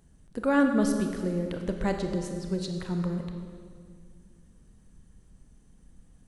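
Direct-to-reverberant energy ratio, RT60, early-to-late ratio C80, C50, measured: 4.5 dB, 2.0 s, 6.5 dB, 5.5 dB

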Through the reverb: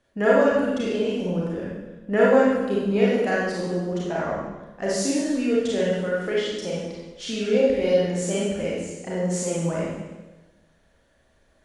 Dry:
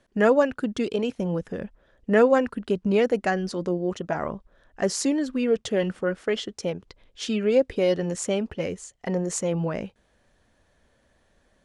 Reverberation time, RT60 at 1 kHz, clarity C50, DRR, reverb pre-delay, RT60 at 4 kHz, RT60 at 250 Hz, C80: 1.2 s, 1.1 s, -2.0 dB, -6.5 dB, 29 ms, 1.1 s, 1.3 s, 1.5 dB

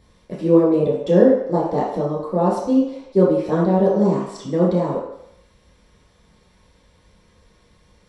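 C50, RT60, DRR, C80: 2.5 dB, 0.75 s, -6.5 dB, 5.5 dB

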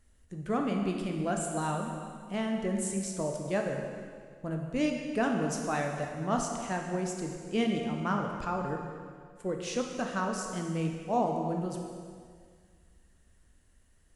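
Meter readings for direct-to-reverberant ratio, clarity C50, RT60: 1.5 dB, 3.5 dB, 2.0 s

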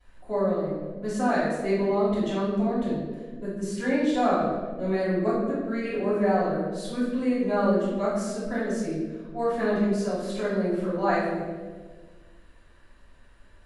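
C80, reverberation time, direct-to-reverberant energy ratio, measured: 3.0 dB, 1.5 s, -15.5 dB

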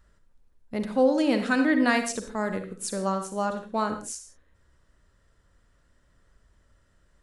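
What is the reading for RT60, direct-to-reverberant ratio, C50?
not exponential, 7.0 dB, 8.0 dB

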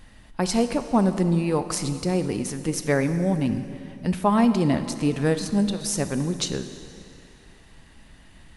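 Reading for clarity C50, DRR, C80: 10.5 dB, 9.5 dB, 11.0 dB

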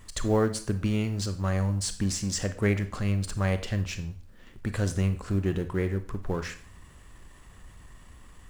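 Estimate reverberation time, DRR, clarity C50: 0.45 s, 9.5 dB, 13.0 dB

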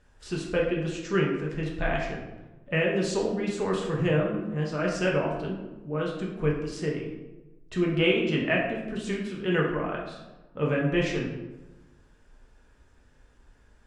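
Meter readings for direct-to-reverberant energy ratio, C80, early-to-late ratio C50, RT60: -2.5 dB, 6.5 dB, 4.0 dB, 1.1 s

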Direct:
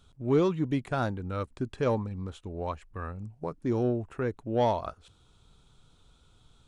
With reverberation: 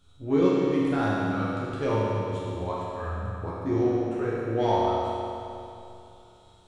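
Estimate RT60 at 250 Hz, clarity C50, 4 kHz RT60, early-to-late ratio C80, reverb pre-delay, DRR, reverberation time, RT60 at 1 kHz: 2.8 s, -3.5 dB, 2.6 s, -2.0 dB, 11 ms, -8.0 dB, 2.8 s, 2.8 s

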